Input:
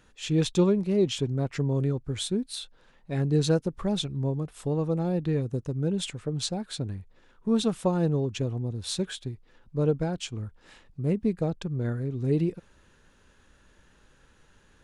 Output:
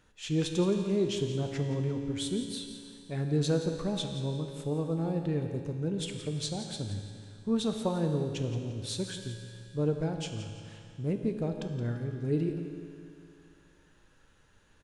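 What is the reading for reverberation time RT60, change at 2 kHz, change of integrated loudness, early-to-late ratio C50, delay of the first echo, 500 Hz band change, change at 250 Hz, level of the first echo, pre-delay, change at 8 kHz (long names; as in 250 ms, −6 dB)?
2.5 s, −3.5 dB, −4.0 dB, 5.0 dB, 171 ms, −4.0 dB, −4.0 dB, −12.0 dB, 4 ms, −3.5 dB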